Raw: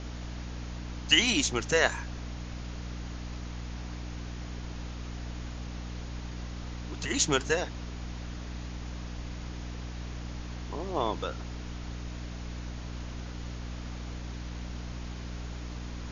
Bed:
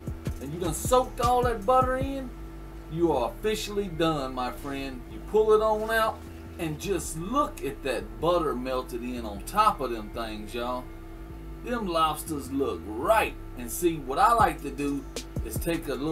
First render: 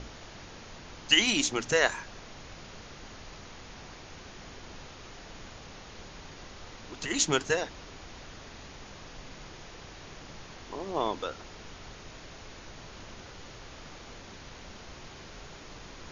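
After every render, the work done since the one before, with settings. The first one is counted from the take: notches 60/120/180/240/300 Hz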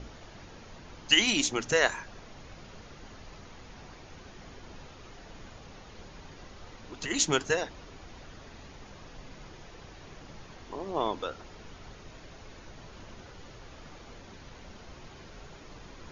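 denoiser 6 dB, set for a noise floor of -48 dBFS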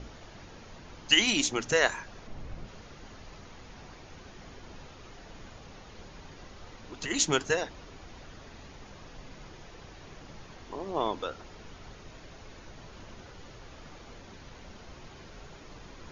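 2.27–2.67 tilt -2 dB/oct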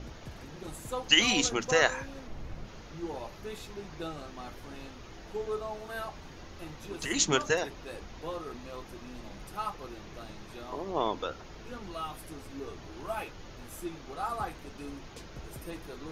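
add bed -14 dB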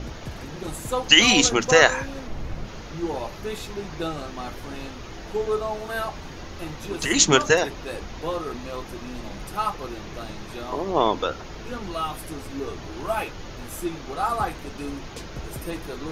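gain +9.5 dB; limiter -1 dBFS, peak gain reduction 2.5 dB

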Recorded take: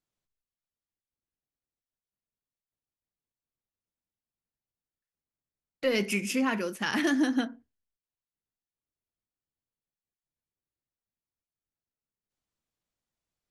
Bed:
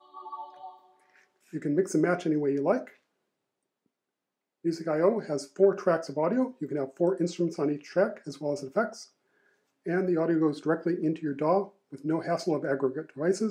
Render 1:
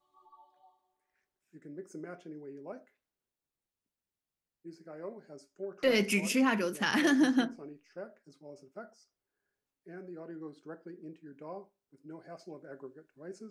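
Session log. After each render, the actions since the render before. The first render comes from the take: add bed -19 dB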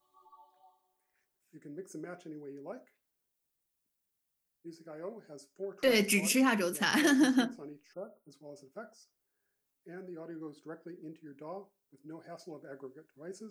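7.93–8.31 spectral delete 1400–8800 Hz; high shelf 8100 Hz +12 dB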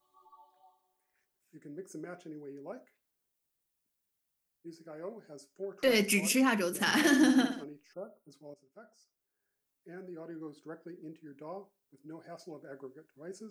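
6.69–7.64 flutter echo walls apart 10.7 m, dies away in 0.54 s; 8.54–10.38 fade in equal-power, from -14 dB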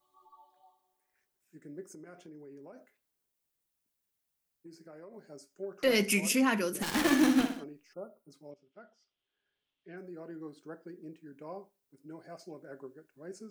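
1.87–5.14 compressor, threshold -46 dBFS; 6.82–7.6 switching dead time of 0.22 ms; 8.51–9.97 synth low-pass 3200 Hz, resonance Q 5.8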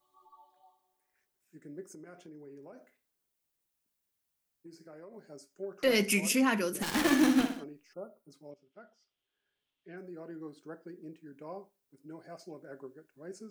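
2.39–4.94 flutter echo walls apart 9.6 m, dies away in 0.26 s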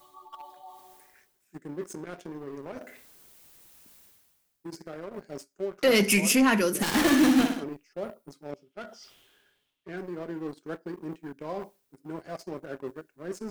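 sample leveller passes 2; reverse; upward compressor, threshold -30 dBFS; reverse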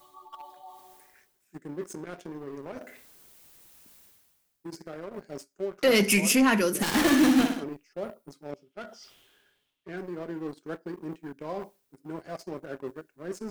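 nothing audible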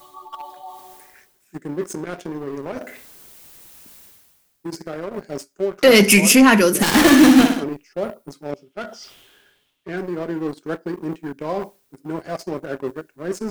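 gain +10 dB

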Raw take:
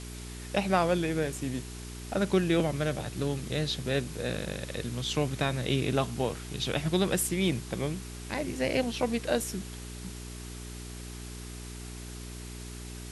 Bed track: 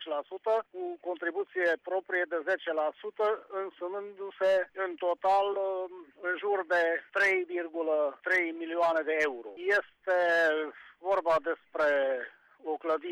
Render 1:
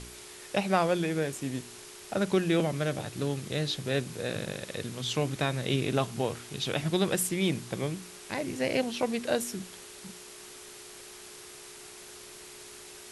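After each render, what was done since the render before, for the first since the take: de-hum 60 Hz, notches 5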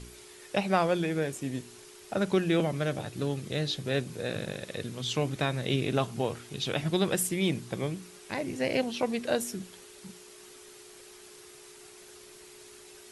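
denoiser 6 dB, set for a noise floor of -48 dBFS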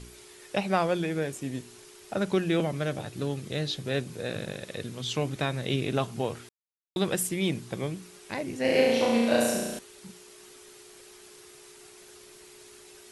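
6.49–6.96 mute; 8.61–9.79 flutter echo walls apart 5.9 m, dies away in 1.3 s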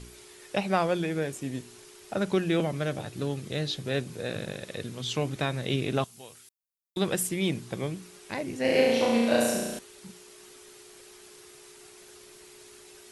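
6.04–6.97 pre-emphasis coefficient 0.9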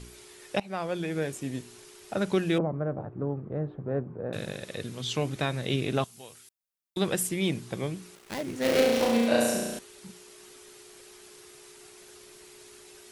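0.6–1.23 fade in, from -16 dB; 2.58–4.33 LPF 1200 Hz 24 dB/oct; 8.15–9.27 switching dead time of 0.17 ms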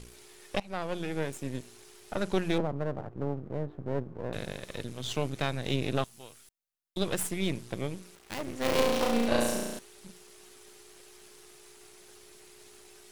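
half-wave gain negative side -12 dB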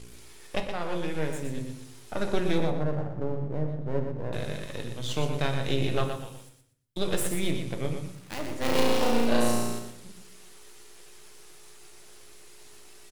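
feedback echo 0.12 s, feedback 26%, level -7 dB; shoebox room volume 72 m³, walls mixed, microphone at 0.41 m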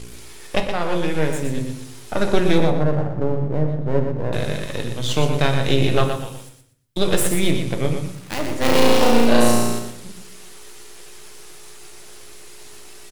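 gain +9.5 dB; limiter -1 dBFS, peak gain reduction 2.5 dB

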